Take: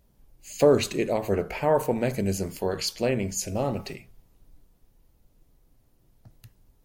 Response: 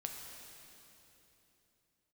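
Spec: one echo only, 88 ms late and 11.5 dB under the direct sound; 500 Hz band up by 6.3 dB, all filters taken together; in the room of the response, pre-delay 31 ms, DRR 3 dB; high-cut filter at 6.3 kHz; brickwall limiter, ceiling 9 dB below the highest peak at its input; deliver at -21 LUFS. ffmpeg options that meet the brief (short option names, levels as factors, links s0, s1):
-filter_complex "[0:a]lowpass=6300,equalizer=f=500:t=o:g=7.5,alimiter=limit=0.251:level=0:latency=1,aecho=1:1:88:0.266,asplit=2[s0][s1];[1:a]atrim=start_sample=2205,adelay=31[s2];[s1][s2]afir=irnorm=-1:irlink=0,volume=0.794[s3];[s0][s3]amix=inputs=2:normalize=0,volume=1.19"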